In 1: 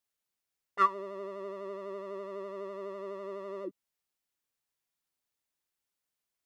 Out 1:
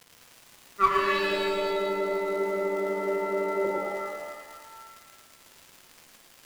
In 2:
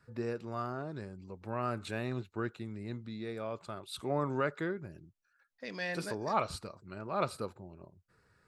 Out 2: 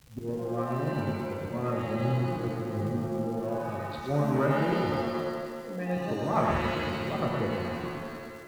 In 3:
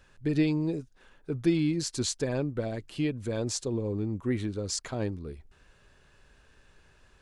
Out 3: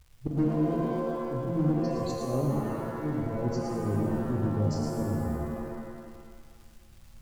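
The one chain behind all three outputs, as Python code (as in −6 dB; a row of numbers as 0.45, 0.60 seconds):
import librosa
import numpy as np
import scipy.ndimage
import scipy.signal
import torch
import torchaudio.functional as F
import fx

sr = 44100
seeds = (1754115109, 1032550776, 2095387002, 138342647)

p1 = fx.wiener(x, sr, points=25)
p2 = fx.riaa(p1, sr, side='playback')
p3 = fx.spec_gate(p2, sr, threshold_db=-20, keep='strong')
p4 = fx.low_shelf(p3, sr, hz=150.0, db=-7.0)
p5 = fx.chorus_voices(p4, sr, voices=2, hz=0.51, base_ms=26, depth_ms=4.0, mix_pct=25)
p6 = fx.auto_swell(p5, sr, attack_ms=108.0)
p7 = fx.clip_asym(p6, sr, top_db=-38.5, bottom_db=-22.5)
p8 = p6 + F.gain(torch.from_numpy(p7), -3.0).numpy()
p9 = fx.hpss(p8, sr, part='harmonic', gain_db=-4)
p10 = fx.dmg_crackle(p9, sr, seeds[0], per_s=180.0, level_db=-45.0)
p11 = p10 + 10.0 ** (-4.0 / 20.0) * np.pad(p10, (int(112 * sr / 1000.0), 0))[:len(p10)]
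p12 = fx.rev_shimmer(p11, sr, seeds[1], rt60_s=1.5, semitones=7, shimmer_db=-2, drr_db=3.0)
y = p12 * 10.0 ** (-30 / 20.0) / np.sqrt(np.mean(np.square(p12)))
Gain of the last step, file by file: +7.5, +2.5, −3.5 decibels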